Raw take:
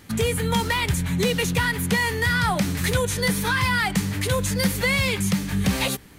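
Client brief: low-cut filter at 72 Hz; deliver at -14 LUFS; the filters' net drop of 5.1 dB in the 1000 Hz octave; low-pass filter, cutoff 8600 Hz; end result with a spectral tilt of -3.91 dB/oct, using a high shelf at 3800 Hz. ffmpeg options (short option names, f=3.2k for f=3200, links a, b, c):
-af "highpass=72,lowpass=8.6k,equalizer=f=1k:t=o:g=-6.5,highshelf=f=3.8k:g=4,volume=9dB"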